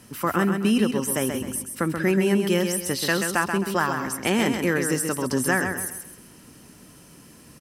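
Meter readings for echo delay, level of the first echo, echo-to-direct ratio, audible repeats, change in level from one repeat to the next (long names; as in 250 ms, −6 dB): 132 ms, −6.0 dB, −5.5 dB, 4, −9.5 dB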